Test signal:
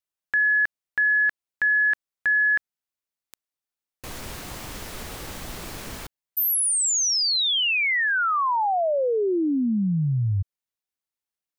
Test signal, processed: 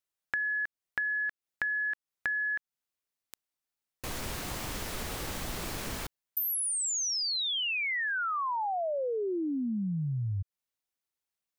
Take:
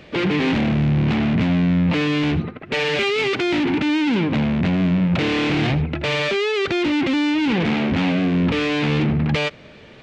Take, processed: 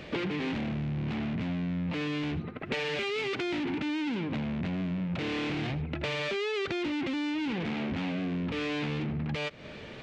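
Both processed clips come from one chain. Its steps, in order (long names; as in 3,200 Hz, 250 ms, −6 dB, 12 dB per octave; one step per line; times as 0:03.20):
downward compressor 10 to 1, threshold −30 dBFS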